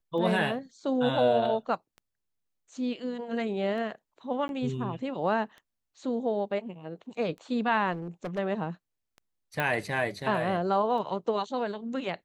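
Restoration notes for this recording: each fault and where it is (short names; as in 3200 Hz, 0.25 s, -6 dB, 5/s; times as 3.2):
tick 33 1/3 rpm -33 dBFS
4.48–4.49 gap 11 ms
7.92–8.39 clipped -30.5 dBFS
9.6 pop -16 dBFS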